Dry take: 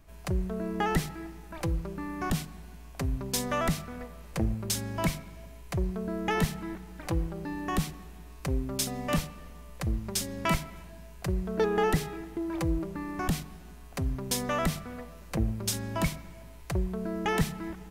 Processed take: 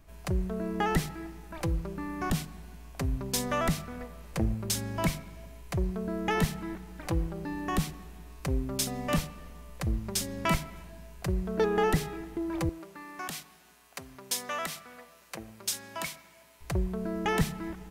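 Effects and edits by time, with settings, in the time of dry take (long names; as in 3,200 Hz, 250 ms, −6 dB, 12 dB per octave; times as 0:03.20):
0:12.69–0:16.61: high-pass filter 1,200 Hz 6 dB per octave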